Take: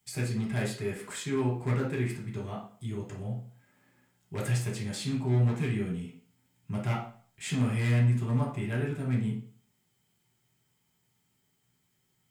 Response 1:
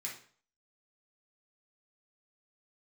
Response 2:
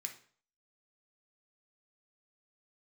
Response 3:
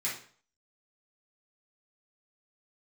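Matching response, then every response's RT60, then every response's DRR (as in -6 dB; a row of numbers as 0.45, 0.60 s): 1; 0.50, 0.50, 0.50 s; -4.5, 3.0, -8.5 dB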